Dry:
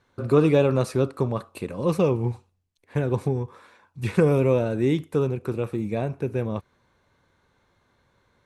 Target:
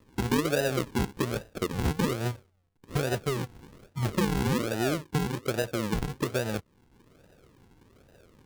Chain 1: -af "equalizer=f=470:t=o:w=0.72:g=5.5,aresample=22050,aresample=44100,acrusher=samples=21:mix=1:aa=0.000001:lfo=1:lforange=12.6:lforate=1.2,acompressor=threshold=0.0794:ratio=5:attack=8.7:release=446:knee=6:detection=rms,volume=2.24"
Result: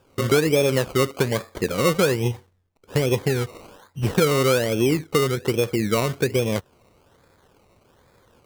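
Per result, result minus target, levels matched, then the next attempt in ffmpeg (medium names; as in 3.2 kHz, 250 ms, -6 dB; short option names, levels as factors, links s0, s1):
decimation with a swept rate: distortion -19 dB; compression: peak gain reduction -7.5 dB
-af "equalizer=f=470:t=o:w=0.72:g=5.5,aresample=22050,aresample=44100,acrusher=samples=57:mix=1:aa=0.000001:lfo=1:lforange=34.2:lforate=1.2,acompressor=threshold=0.0794:ratio=5:attack=8.7:release=446:knee=6:detection=rms,volume=2.24"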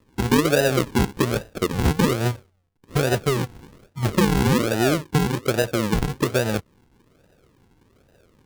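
compression: peak gain reduction -8 dB
-af "equalizer=f=470:t=o:w=0.72:g=5.5,aresample=22050,aresample=44100,acrusher=samples=57:mix=1:aa=0.000001:lfo=1:lforange=34.2:lforate=1.2,acompressor=threshold=0.0251:ratio=5:attack=8.7:release=446:knee=6:detection=rms,volume=2.24"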